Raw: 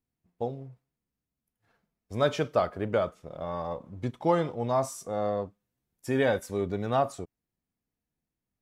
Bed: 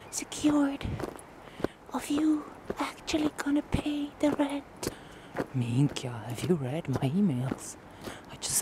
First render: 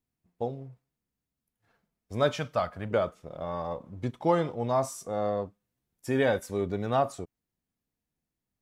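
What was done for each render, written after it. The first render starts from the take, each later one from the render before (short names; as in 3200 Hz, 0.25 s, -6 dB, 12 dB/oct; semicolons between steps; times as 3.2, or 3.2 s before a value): 2.31–2.91 bell 380 Hz -14 dB 0.75 oct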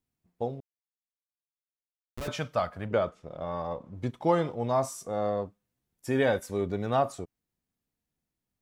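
0.6–2.28 Schmitt trigger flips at -24 dBFS; 2.86–3.95 Bessel low-pass 6600 Hz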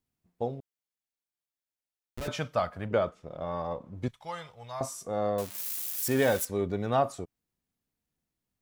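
0.55–2.31 notch 1100 Hz, Q 9.3; 4.08–4.81 passive tone stack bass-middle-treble 10-0-10; 5.38–6.45 switching spikes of -26.5 dBFS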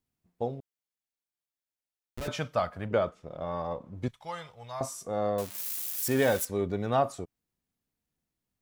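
nothing audible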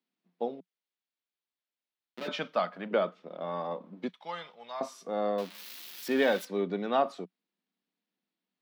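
Chebyshev high-pass 180 Hz, order 5; resonant high shelf 5600 Hz -13 dB, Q 1.5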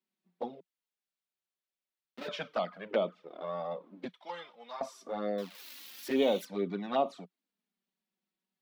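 envelope flanger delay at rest 5.3 ms, full sweep at -23.5 dBFS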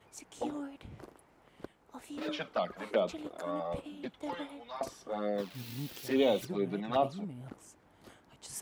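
add bed -15 dB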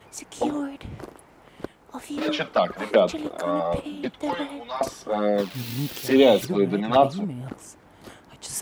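gain +11.5 dB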